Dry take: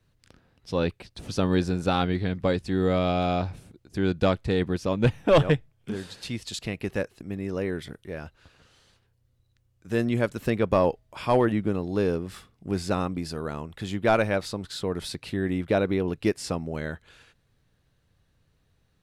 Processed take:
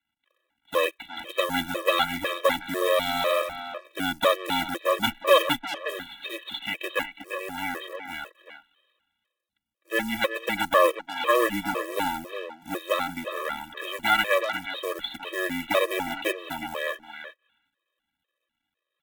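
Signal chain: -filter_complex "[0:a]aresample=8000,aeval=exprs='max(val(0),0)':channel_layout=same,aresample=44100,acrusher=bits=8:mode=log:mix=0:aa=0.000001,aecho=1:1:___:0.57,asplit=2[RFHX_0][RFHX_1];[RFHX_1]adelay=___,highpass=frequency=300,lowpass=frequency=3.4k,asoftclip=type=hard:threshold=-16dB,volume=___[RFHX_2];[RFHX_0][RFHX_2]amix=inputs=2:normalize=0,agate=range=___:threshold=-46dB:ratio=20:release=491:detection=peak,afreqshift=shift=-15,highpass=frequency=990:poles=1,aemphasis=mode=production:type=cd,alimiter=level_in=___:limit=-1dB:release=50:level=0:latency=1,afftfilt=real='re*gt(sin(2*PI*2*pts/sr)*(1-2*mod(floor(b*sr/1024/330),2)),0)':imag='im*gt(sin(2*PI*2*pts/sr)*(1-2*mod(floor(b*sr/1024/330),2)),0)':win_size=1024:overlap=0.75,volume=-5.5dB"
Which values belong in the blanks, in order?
3.5, 360, -9dB, -12dB, 18dB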